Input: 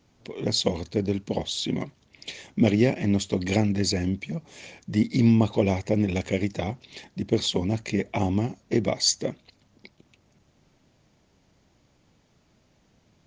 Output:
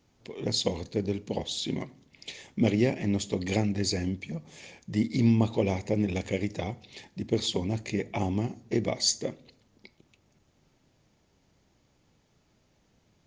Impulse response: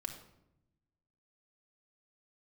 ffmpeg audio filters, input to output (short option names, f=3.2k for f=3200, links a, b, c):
-filter_complex "[0:a]asplit=2[a][b];[1:a]atrim=start_sample=2205,asetrate=66150,aresample=44100,highshelf=f=5.9k:g=11.5[c];[b][c]afir=irnorm=-1:irlink=0,volume=-7.5dB[d];[a][d]amix=inputs=2:normalize=0,volume=-5.5dB"